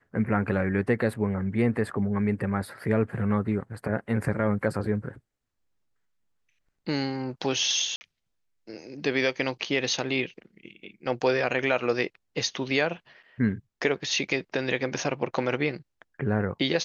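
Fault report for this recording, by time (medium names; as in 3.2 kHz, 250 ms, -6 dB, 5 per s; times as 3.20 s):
7.96–8.01 s: dropout 50 ms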